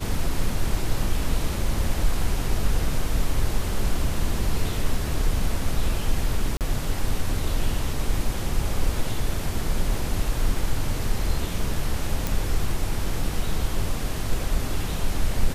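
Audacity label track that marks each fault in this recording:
6.570000	6.610000	gap 38 ms
12.270000	12.270000	pop

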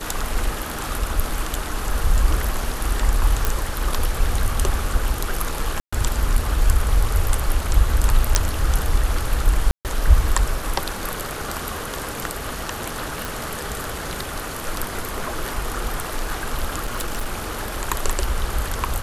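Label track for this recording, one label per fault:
3.450000	3.450000	pop
5.800000	5.920000	gap 0.125 s
8.350000	8.350000	pop -1 dBFS
9.710000	9.850000	gap 0.138 s
13.250000	13.250000	pop
16.830000	17.290000	clipped -20 dBFS

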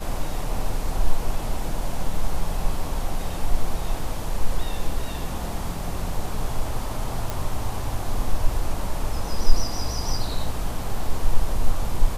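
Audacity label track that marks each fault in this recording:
7.300000	7.300000	pop

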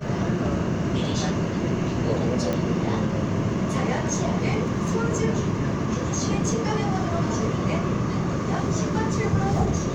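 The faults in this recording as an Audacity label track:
2.530000	2.530000	pop -13 dBFS

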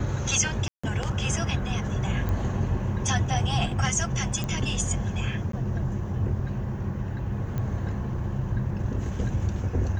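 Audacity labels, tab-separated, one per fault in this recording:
0.680000	0.830000	gap 0.155 s
2.290000	2.290000	pop -18 dBFS
4.440000	4.440000	pop -16 dBFS
5.520000	5.530000	gap 13 ms
7.580000	7.580000	pop -20 dBFS

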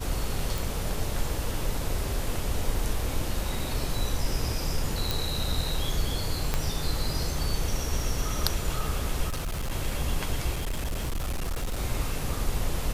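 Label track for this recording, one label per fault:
0.580000	0.580000	pop
5.110000	5.110000	pop
6.540000	6.540000	pop -11 dBFS
9.280000	9.720000	clipped -27 dBFS
10.550000	11.790000	clipped -26 dBFS

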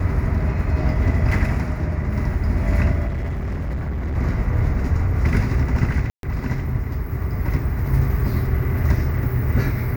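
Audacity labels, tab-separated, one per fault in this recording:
3.070000	4.170000	clipped -21.5 dBFS
6.100000	6.230000	gap 0.132 s

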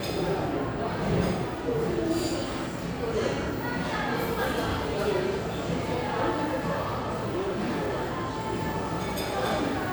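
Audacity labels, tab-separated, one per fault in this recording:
6.840000	8.410000	clipped -25 dBFS

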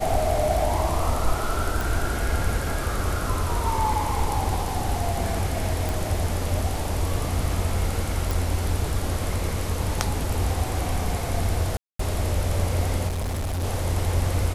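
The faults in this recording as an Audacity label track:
1.810000	1.810000	pop
5.890000	5.890000	pop
8.310000	8.310000	pop
11.770000	11.990000	gap 0.224 s
13.070000	13.640000	clipped -24 dBFS

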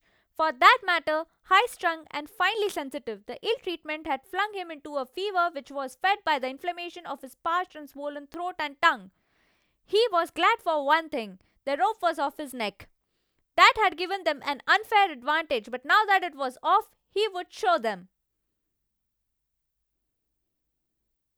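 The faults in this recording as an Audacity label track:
8.340000	8.340000	pop -24 dBFS

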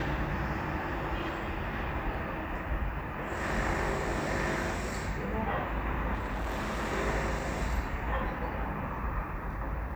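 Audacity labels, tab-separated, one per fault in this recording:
6.140000	6.930000	clipped -30 dBFS

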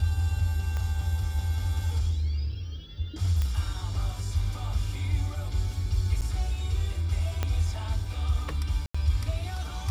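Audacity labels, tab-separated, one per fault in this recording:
0.770000	0.770000	pop -21 dBFS
3.420000	3.420000	pop -17 dBFS
6.210000	6.220000	gap 8.1 ms
7.430000	7.430000	pop -14 dBFS
8.860000	8.950000	gap 85 ms

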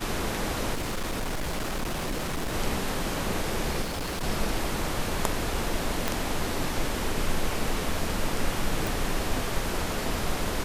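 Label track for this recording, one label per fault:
0.730000	2.540000	clipped -26.5 dBFS
3.820000	4.240000	clipped -28 dBFS
6.080000	6.080000	pop
8.870000	8.870000	pop

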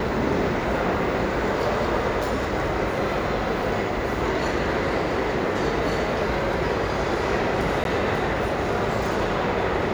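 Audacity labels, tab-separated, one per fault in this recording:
7.840000	7.850000	gap 12 ms

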